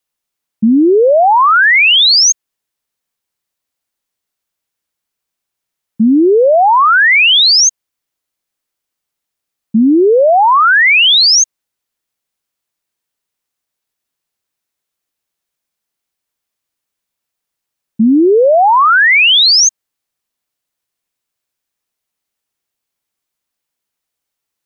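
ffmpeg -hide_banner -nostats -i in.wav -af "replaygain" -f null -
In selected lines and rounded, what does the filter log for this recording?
track_gain = -11.4 dB
track_peak = 0.406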